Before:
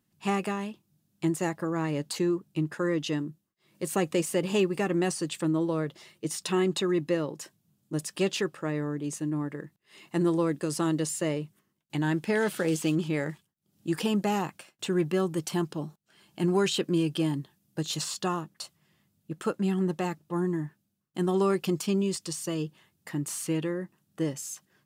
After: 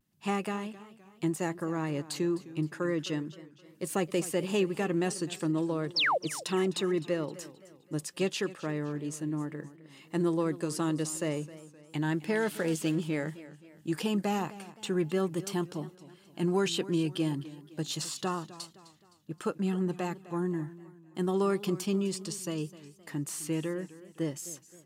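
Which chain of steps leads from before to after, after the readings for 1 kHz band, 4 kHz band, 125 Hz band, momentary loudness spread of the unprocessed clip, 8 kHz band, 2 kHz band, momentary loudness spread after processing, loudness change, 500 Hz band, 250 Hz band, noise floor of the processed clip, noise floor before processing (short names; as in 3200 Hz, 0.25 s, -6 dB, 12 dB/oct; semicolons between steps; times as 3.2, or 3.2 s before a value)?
-2.0 dB, -1.0 dB, -3.0 dB, 11 LU, -3.0 dB, -1.0 dB, 13 LU, -2.5 dB, -3.0 dB, -3.0 dB, -59 dBFS, -76 dBFS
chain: vibrato 0.34 Hz 20 cents; painted sound fall, 5.96–6.18, 470–5800 Hz -23 dBFS; warbling echo 0.26 s, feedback 44%, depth 109 cents, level -17 dB; gain -3 dB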